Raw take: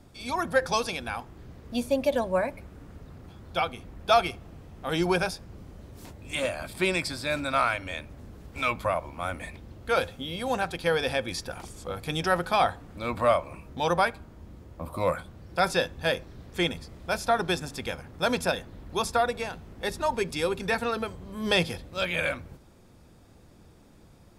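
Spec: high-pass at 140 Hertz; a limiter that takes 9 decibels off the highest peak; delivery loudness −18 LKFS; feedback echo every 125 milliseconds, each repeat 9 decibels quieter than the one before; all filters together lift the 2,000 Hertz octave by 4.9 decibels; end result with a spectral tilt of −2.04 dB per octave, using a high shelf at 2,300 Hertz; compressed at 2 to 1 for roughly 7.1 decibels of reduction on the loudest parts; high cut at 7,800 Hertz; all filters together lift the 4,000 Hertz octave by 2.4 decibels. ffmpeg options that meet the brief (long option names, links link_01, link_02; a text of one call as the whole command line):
ffmpeg -i in.wav -af "highpass=140,lowpass=7800,equalizer=frequency=2000:width_type=o:gain=9,highshelf=frequency=2300:gain=-8,equalizer=frequency=4000:width_type=o:gain=7,acompressor=threshold=-28dB:ratio=2,alimiter=limit=-21.5dB:level=0:latency=1,aecho=1:1:125|250|375|500:0.355|0.124|0.0435|0.0152,volume=16dB" out.wav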